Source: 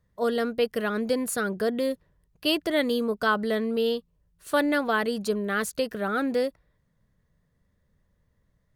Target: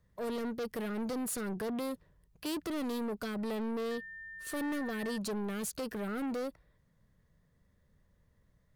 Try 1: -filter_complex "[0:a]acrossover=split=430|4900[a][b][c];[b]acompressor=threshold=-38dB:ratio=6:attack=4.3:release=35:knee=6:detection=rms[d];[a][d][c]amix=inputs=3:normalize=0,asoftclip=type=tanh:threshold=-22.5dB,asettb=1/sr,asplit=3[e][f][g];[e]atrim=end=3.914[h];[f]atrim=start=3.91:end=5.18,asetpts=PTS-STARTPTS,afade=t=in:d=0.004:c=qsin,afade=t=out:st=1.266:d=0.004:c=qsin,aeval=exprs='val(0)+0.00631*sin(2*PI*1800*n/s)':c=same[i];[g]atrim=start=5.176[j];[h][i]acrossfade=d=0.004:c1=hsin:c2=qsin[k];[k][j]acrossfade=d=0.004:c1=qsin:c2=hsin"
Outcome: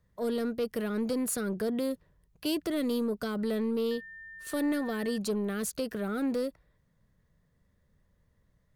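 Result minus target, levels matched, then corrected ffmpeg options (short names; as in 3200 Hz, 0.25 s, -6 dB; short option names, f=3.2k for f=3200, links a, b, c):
soft clip: distortion -11 dB
-filter_complex "[0:a]acrossover=split=430|4900[a][b][c];[b]acompressor=threshold=-38dB:ratio=6:attack=4.3:release=35:knee=6:detection=rms[d];[a][d][c]amix=inputs=3:normalize=0,asoftclip=type=tanh:threshold=-33dB,asettb=1/sr,asplit=3[e][f][g];[e]atrim=end=3.914[h];[f]atrim=start=3.91:end=5.18,asetpts=PTS-STARTPTS,afade=t=in:d=0.004:c=qsin,afade=t=out:st=1.266:d=0.004:c=qsin,aeval=exprs='val(0)+0.00631*sin(2*PI*1800*n/s)':c=same[i];[g]atrim=start=5.176[j];[h][i]acrossfade=d=0.004:c1=hsin:c2=qsin[k];[k][j]acrossfade=d=0.004:c1=qsin:c2=hsin"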